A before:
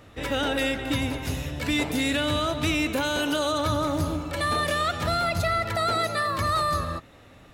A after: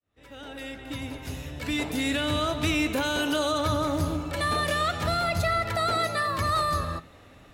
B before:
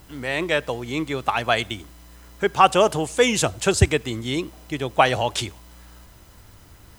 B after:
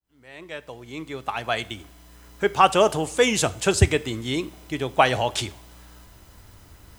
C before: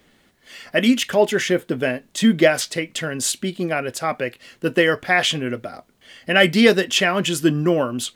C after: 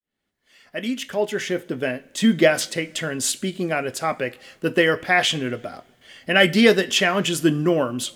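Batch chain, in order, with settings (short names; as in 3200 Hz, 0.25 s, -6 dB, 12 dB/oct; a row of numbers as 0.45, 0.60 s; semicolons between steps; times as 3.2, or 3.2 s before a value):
opening faded in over 2.47 s; two-slope reverb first 0.42 s, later 2 s, from -18 dB, DRR 14.5 dB; gain -1 dB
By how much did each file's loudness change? -1.0, -0.5, -1.5 LU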